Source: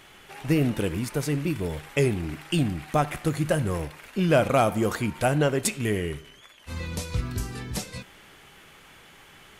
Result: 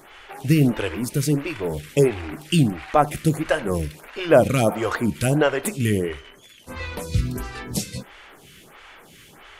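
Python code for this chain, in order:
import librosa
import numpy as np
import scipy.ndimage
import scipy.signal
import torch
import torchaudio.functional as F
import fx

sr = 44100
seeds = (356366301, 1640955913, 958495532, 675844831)

y = fx.stagger_phaser(x, sr, hz=1.5)
y = F.gain(torch.from_numpy(y), 7.5).numpy()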